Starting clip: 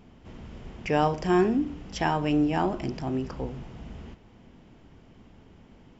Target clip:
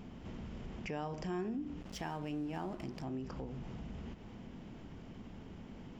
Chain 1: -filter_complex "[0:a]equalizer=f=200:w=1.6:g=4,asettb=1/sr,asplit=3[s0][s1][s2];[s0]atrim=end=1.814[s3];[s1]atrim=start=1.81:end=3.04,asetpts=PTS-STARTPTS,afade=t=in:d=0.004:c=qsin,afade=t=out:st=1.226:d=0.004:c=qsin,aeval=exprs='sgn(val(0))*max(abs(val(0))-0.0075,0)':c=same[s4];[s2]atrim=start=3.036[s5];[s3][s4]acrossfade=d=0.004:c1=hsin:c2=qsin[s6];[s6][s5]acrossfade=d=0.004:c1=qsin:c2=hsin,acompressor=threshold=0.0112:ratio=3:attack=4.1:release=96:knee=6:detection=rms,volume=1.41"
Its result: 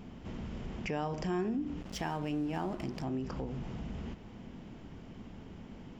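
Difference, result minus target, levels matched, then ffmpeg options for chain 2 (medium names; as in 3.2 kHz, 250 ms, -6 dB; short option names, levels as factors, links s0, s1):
compression: peak gain reduction -5 dB
-filter_complex "[0:a]equalizer=f=200:w=1.6:g=4,asettb=1/sr,asplit=3[s0][s1][s2];[s0]atrim=end=1.814[s3];[s1]atrim=start=1.81:end=3.04,asetpts=PTS-STARTPTS,afade=t=in:d=0.004:c=qsin,afade=t=out:st=1.226:d=0.004:c=qsin,aeval=exprs='sgn(val(0))*max(abs(val(0))-0.0075,0)':c=same[s4];[s2]atrim=start=3.036[s5];[s3][s4]acrossfade=d=0.004:c1=hsin:c2=qsin[s6];[s6][s5]acrossfade=d=0.004:c1=qsin:c2=hsin,acompressor=threshold=0.00473:ratio=3:attack=4.1:release=96:knee=6:detection=rms,volume=1.41"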